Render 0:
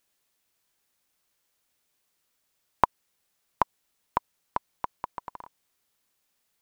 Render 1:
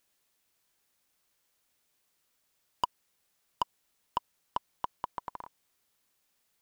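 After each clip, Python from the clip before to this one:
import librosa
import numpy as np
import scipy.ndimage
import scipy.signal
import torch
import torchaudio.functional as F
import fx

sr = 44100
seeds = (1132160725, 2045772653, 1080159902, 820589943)

y = 10.0 ** (-18.0 / 20.0) * np.tanh(x / 10.0 ** (-18.0 / 20.0))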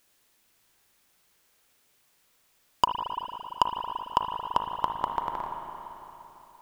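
y = fx.rev_spring(x, sr, rt60_s=3.4, pass_ms=(37, 56), chirp_ms=45, drr_db=2.5)
y = F.gain(torch.from_numpy(y), 8.0).numpy()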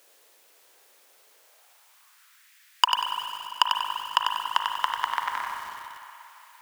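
y = fx.filter_sweep_highpass(x, sr, from_hz=480.0, to_hz=1800.0, start_s=1.32, end_s=2.5, q=2.5)
y = fx.echo_crushed(y, sr, ms=95, feedback_pct=35, bits=8, wet_db=-5.5)
y = F.gain(torch.from_numpy(y), 8.0).numpy()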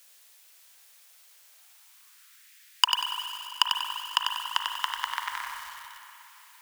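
y = fx.tone_stack(x, sr, knobs='10-0-10')
y = F.gain(torch.from_numpy(y), 3.5).numpy()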